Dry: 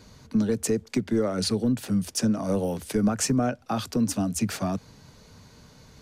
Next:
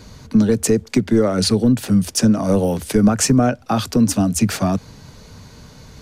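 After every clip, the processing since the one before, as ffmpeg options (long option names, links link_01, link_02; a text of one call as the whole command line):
ffmpeg -i in.wav -af "lowshelf=frequency=92:gain=5,volume=8.5dB" out.wav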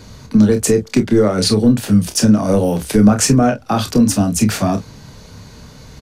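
ffmpeg -i in.wav -af "aecho=1:1:29|47:0.422|0.188,volume=2dB" out.wav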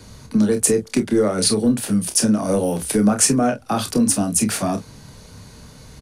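ffmpeg -i in.wav -filter_complex "[0:a]equalizer=frequency=9700:width_type=o:width=0.42:gain=11.5,acrossover=split=170|1300|2600[link_01][link_02][link_03][link_04];[link_01]acompressor=threshold=-28dB:ratio=6[link_05];[link_05][link_02][link_03][link_04]amix=inputs=4:normalize=0,volume=-4dB" out.wav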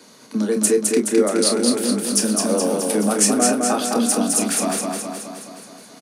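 ffmpeg -i in.wav -af "highpass=frequency=230:width=0.5412,highpass=frequency=230:width=1.3066,aecho=1:1:211|422|633|844|1055|1266|1477|1688|1899:0.708|0.418|0.246|0.145|0.0858|0.0506|0.0299|0.0176|0.0104,volume=-1dB" out.wav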